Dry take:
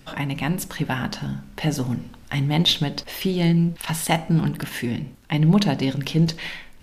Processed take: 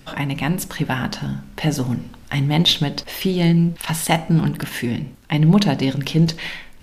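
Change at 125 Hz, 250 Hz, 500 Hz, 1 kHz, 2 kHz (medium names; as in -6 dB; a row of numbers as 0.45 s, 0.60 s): +3.0 dB, +3.0 dB, +3.0 dB, +3.0 dB, +3.0 dB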